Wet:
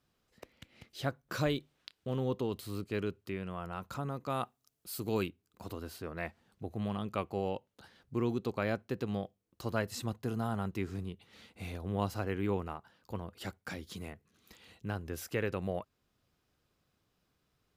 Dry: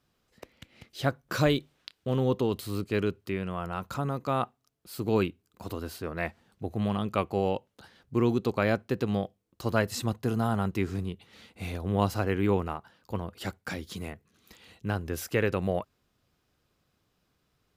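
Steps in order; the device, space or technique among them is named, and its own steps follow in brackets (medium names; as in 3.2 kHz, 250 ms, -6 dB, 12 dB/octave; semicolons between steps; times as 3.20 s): 4.30–5.29 s: treble shelf 4.3 kHz +10 dB; parallel compression (in parallel at -4 dB: compression, threshold -41 dBFS, peak gain reduction 20.5 dB); on the sum: trim -8 dB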